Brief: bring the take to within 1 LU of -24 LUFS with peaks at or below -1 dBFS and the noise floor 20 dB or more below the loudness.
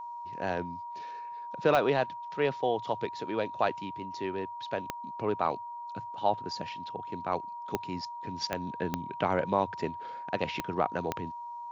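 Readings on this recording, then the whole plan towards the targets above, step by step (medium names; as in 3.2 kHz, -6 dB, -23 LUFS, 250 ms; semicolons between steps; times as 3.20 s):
clicks found 7; steady tone 950 Hz; tone level -38 dBFS; loudness -33.0 LUFS; peak level -12.0 dBFS; loudness target -24.0 LUFS
-> de-click; band-stop 950 Hz, Q 30; trim +9 dB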